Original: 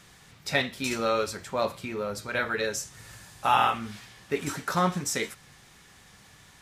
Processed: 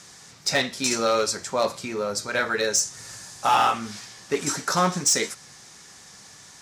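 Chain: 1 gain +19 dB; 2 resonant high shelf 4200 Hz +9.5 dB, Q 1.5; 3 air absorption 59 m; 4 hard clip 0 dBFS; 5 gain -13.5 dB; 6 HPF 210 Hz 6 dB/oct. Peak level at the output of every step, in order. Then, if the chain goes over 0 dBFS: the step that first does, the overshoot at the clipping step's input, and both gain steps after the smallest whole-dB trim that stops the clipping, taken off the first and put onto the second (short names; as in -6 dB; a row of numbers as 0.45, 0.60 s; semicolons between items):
+11.5, +13.0, +10.0, 0.0, -13.5, -11.0 dBFS; step 1, 10.0 dB; step 1 +9 dB, step 5 -3.5 dB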